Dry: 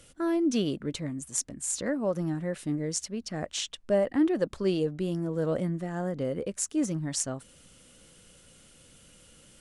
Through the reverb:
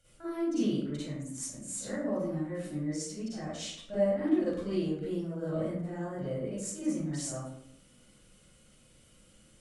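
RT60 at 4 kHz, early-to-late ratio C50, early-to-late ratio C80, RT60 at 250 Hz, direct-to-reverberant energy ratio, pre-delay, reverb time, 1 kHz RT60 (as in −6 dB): 0.40 s, −6.0 dB, 2.0 dB, 0.95 s, −11.5 dB, 38 ms, 0.70 s, 0.60 s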